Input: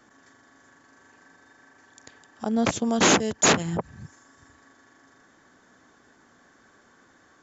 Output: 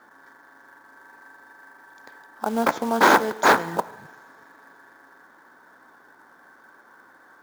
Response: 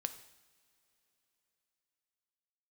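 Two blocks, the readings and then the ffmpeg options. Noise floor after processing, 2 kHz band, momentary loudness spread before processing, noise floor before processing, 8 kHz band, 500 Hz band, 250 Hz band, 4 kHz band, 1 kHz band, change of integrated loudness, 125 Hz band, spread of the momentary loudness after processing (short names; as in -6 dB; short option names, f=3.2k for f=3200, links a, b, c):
-54 dBFS, +5.5 dB, 13 LU, -59 dBFS, n/a, +2.5 dB, -2.5 dB, -4.5 dB, +8.0 dB, +2.0 dB, -8.5 dB, 13 LU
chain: -filter_complex "[0:a]highshelf=f=4k:g=-11,asplit=2[a][b];[1:a]atrim=start_sample=2205[c];[b][c]afir=irnorm=-1:irlink=0,volume=4dB[d];[a][d]amix=inputs=2:normalize=0,aeval=exprs='val(0)+0.002*(sin(2*PI*60*n/s)+sin(2*PI*2*60*n/s)/2+sin(2*PI*3*60*n/s)/3+sin(2*PI*4*60*n/s)/4+sin(2*PI*5*60*n/s)/5)':c=same,highpass=320,equalizer=f=930:t=q:w=4:g=9,equalizer=f=1.5k:t=q:w=4:g=8,equalizer=f=2.8k:t=q:w=4:g=-10,lowpass=f=5.5k:w=0.5412,lowpass=f=5.5k:w=1.3066,acrusher=bits=4:mode=log:mix=0:aa=0.000001,volume=-4.5dB"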